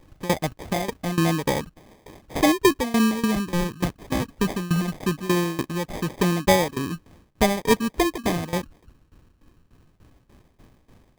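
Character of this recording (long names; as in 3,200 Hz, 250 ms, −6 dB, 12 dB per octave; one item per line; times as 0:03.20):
tremolo saw down 3.4 Hz, depth 90%
phaser sweep stages 8, 0.19 Hz, lowest notch 620–3,000 Hz
aliases and images of a low sample rate 1,400 Hz, jitter 0%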